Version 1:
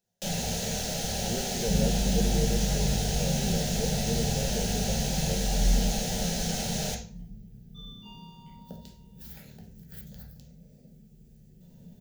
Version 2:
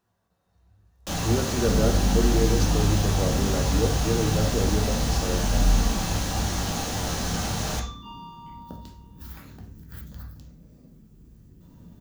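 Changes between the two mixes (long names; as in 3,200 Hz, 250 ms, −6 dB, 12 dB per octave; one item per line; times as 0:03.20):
speech +6.5 dB
first sound: entry +0.85 s
master: remove phaser with its sweep stopped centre 300 Hz, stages 6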